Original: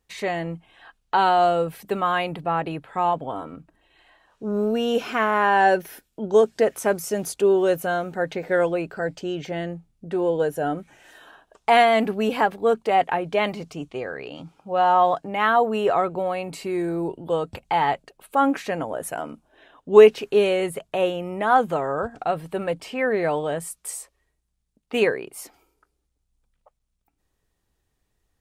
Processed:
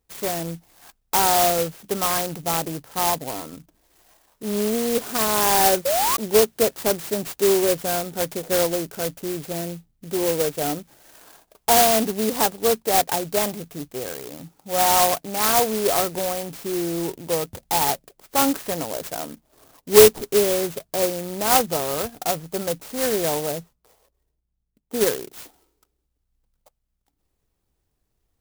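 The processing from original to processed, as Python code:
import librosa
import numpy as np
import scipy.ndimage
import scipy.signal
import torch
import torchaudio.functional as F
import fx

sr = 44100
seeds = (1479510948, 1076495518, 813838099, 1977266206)

y = fx.spec_paint(x, sr, seeds[0], shape='rise', start_s=5.85, length_s=0.32, low_hz=520.0, high_hz=1200.0, level_db=-20.0)
y = fx.sample_hold(y, sr, seeds[1], rate_hz=2900.0, jitter_pct=0, at=(19.29, 20.27))
y = fx.spacing_loss(y, sr, db_at_10k=45, at=(23.52, 25.01))
y = fx.clock_jitter(y, sr, seeds[2], jitter_ms=0.14)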